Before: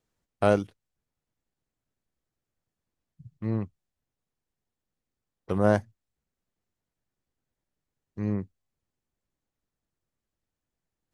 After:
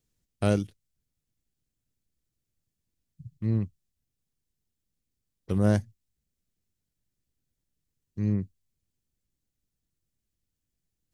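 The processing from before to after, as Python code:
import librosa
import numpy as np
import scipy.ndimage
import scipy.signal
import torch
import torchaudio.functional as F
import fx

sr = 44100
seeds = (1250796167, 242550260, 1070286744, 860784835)

y = fx.peak_eq(x, sr, hz=910.0, db=-15.0, octaves=2.7)
y = y * librosa.db_to_amplitude(5.5)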